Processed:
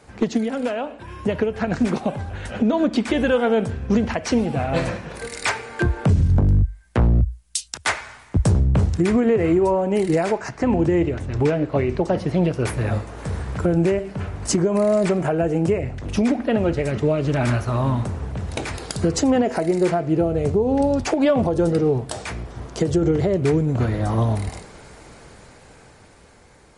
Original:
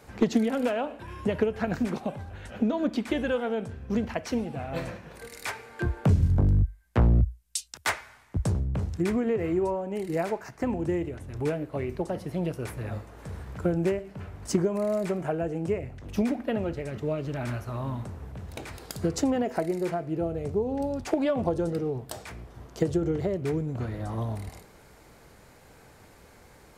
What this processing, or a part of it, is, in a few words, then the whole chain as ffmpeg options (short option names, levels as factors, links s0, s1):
low-bitrate web radio: -filter_complex "[0:a]asettb=1/sr,asplit=3[s0][s1][s2];[s0]atrim=end=10.494[s3];[s1]atrim=start=10.49:end=12.66,asetpts=PTS-STARTPTS,afade=t=in:d=0.004:c=qsin,afade=t=out:st=2.166:d=0.004:c=qsin,lowpass=6500[s4];[s2]atrim=start=12.656[s5];[s3][s4]acrossfade=d=0.004:c1=hsin:c2=qsin[s6];[s6][s5]acrossfade=d=0.004:c1=qsin:c2=hsin,dynaudnorm=f=400:g=9:m=3.35,alimiter=limit=0.251:level=0:latency=1:release=142,volume=1.33" -ar 44100 -c:a libmp3lame -b:a 48k